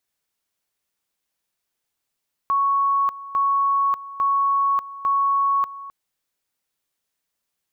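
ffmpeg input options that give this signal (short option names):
-f lavfi -i "aevalsrc='pow(10,(-16.5-16.5*gte(mod(t,0.85),0.59))/20)*sin(2*PI*1110*t)':d=3.4:s=44100"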